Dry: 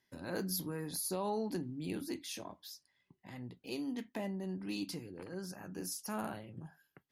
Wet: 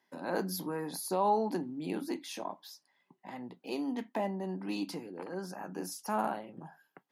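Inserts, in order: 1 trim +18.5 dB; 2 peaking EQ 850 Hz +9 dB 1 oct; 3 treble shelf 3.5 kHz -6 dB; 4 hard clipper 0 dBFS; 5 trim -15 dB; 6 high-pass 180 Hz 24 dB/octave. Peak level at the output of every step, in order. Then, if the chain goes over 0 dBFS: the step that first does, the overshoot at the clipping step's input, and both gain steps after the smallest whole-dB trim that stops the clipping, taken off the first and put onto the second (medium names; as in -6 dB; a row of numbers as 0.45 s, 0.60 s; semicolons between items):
-6.0 dBFS, -2.0 dBFS, -2.5 dBFS, -2.5 dBFS, -17.5 dBFS, -18.0 dBFS; nothing clips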